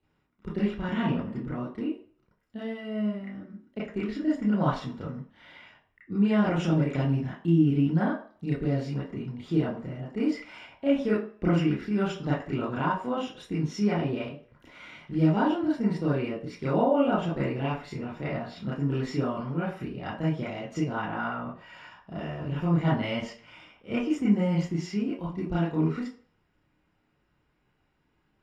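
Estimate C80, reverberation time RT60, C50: 11.5 dB, 0.45 s, 4.0 dB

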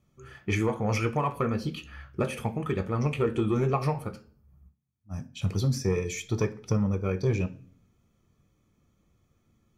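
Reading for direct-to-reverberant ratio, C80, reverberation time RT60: 7.0 dB, 22.5 dB, 0.45 s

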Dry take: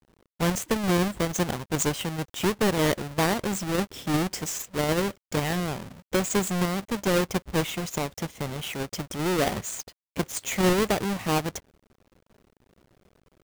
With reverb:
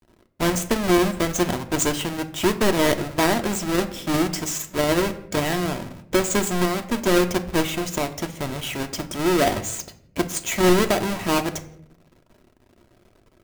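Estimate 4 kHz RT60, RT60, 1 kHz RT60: 0.45 s, 0.70 s, 0.60 s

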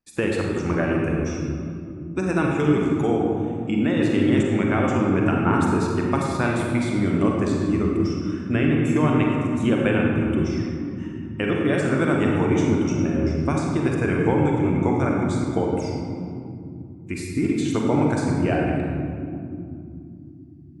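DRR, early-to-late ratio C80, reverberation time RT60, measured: -1.0 dB, 1.5 dB, not exponential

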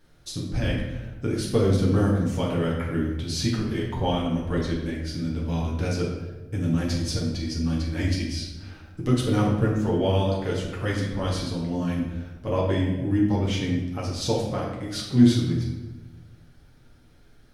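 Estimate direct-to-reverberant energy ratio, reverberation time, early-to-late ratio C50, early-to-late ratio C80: -4.0 dB, 1.1 s, 3.0 dB, 5.0 dB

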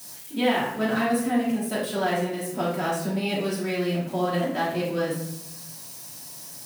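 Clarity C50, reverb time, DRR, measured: 2.5 dB, 0.80 s, -9.0 dB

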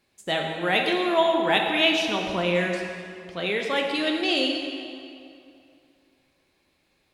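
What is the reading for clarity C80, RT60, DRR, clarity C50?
4.0 dB, 2.5 s, 1.0 dB, 3.0 dB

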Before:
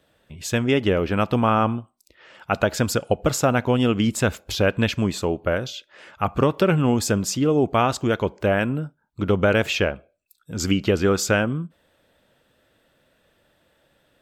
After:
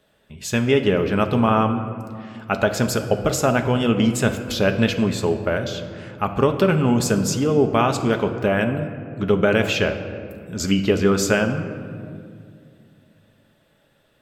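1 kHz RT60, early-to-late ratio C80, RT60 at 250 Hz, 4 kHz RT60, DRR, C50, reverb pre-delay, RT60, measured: 2.0 s, 10.5 dB, 3.2 s, 1.2 s, 5.5 dB, 9.5 dB, 5 ms, 2.3 s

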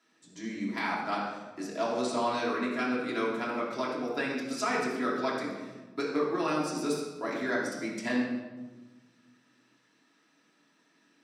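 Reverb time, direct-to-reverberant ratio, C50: 1.2 s, -6.0 dB, 1.5 dB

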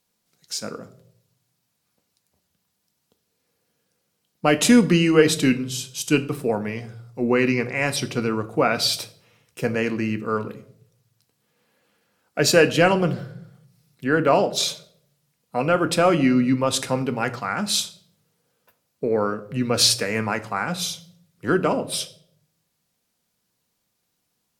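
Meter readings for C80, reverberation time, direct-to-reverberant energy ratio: 19.5 dB, 0.65 s, 10.0 dB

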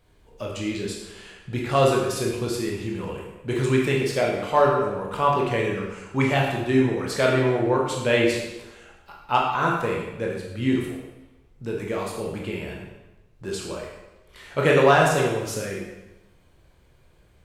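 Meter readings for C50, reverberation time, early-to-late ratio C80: 2.5 dB, 1.0 s, 4.5 dB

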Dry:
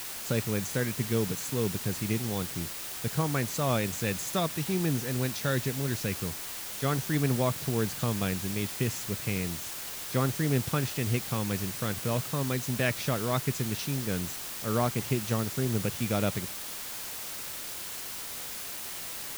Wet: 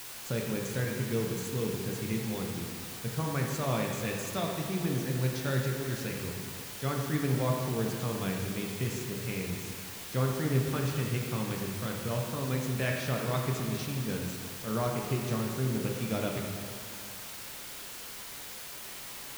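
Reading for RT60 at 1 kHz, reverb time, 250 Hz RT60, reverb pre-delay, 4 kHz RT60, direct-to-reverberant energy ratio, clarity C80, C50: 2.2 s, 2.2 s, 2.2 s, 6 ms, 2.0 s, -0.5 dB, 3.0 dB, 2.0 dB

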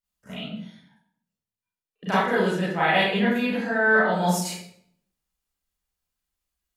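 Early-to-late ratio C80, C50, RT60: 3.5 dB, -0.5 dB, 0.65 s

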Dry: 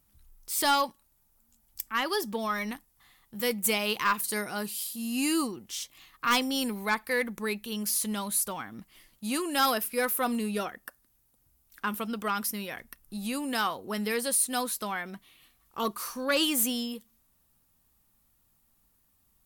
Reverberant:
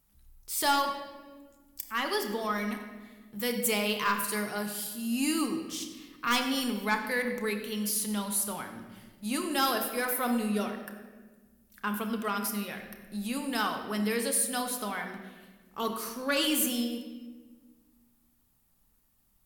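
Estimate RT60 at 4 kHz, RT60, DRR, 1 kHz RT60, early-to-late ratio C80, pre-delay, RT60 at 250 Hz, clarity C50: 0.95 s, 1.4 s, 4.0 dB, 1.2 s, 8.0 dB, 5 ms, 2.2 s, 6.5 dB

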